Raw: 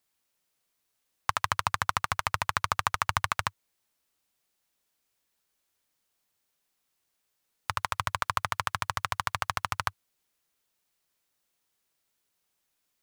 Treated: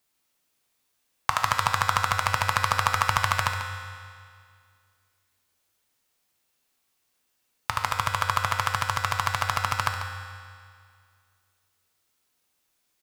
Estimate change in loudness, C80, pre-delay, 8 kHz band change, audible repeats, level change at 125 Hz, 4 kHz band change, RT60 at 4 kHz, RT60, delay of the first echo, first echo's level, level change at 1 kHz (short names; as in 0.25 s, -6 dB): +5.0 dB, 4.5 dB, 4 ms, +5.0 dB, 1, +8.0 dB, +5.0 dB, 2.0 s, 2.1 s, 0.142 s, -11.0 dB, +5.0 dB